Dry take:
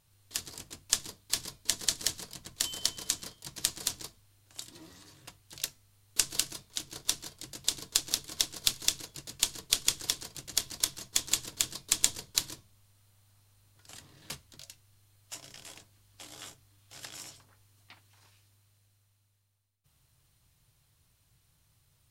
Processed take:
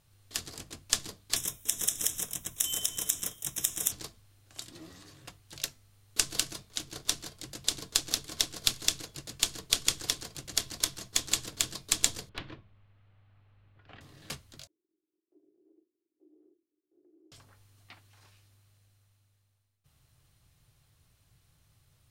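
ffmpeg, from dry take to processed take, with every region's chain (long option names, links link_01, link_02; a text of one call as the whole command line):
ffmpeg -i in.wav -filter_complex "[0:a]asettb=1/sr,asplit=3[link_01][link_02][link_03];[link_01]atrim=end=1.364[link_04];[link_02]atrim=start=1.36:end=3.92,asetpts=PTS-STARTPTS,afade=type=in:duration=0.004:curve=qsin,afade=type=out:start_time=2.556:duration=0.004:curve=qsin,acompressor=threshold=-34dB:ratio=4:attack=3.2:release=140:knee=1:detection=peak,asuperstop=centerf=4500:order=8:qfactor=3,aemphasis=mode=production:type=75fm[link_05];[link_03]atrim=start=3.916[link_06];[link_04][link_05]acrossfade=duration=0.004:curve1=hsin:curve2=qsin[link_07];[link_07][link_06]acrossfade=duration=0.004:curve1=qsin:curve2=hsin,asettb=1/sr,asplit=3[link_08][link_09][link_10];[link_08]atrim=end=12.294[link_11];[link_09]atrim=start=12.29:end=14.01,asetpts=PTS-STARTPTS,afade=type=in:duration=0.004:curve=qsin,afade=type=out:start_time=1.716:duration=0.004:curve=qsin,lowpass=frequency=2800:width=0.5412,lowpass=frequency=2800:width=1.3066,volume=30dB,asoftclip=hard,volume=-30dB[link_12];[link_10]atrim=start=14.006[link_13];[link_11][link_12]acrossfade=duration=0.004:curve1=hsin:curve2=qsin[link_14];[link_14][link_13]acrossfade=duration=0.004:curve1=qsin:curve2=hsin,asettb=1/sr,asplit=3[link_15][link_16][link_17];[link_15]atrim=end=14.674[link_18];[link_16]atrim=start=14.67:end=17.32,asetpts=PTS-STARTPTS,afade=type=in:duration=0.004:curve=qsin,afade=type=out:start_time=2.646:duration=0.004:curve=qsin,aeval=exprs='val(0)*gte(abs(val(0)),0.00112)':channel_layout=same,asuperpass=centerf=350:order=4:qfactor=4.8[link_19];[link_17]atrim=start=17.316[link_20];[link_18][link_19]acrossfade=duration=0.004:curve1=hsin:curve2=qsin[link_21];[link_21][link_20]acrossfade=duration=0.004:curve1=qsin:curve2=hsin,lowpass=frequency=2100:poles=1,aemphasis=mode=production:type=cd,bandreject=frequency=950:width=14,volume=4dB" out.wav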